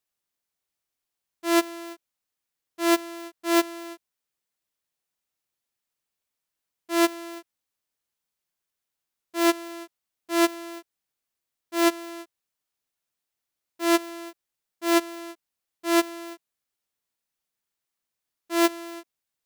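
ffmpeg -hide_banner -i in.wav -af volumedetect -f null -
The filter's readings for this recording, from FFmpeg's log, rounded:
mean_volume: -30.5 dB
max_volume: -11.6 dB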